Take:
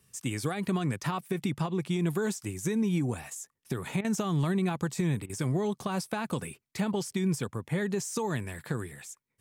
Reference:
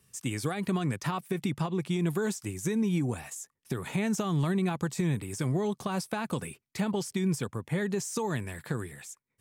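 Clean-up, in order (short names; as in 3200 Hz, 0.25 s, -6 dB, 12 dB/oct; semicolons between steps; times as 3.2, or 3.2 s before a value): interpolate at 4.01/5.26, 34 ms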